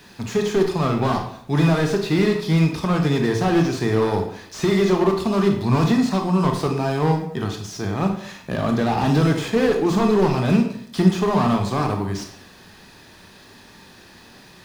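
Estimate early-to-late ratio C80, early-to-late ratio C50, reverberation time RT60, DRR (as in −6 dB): 10.0 dB, 7.0 dB, 0.65 s, 3.5 dB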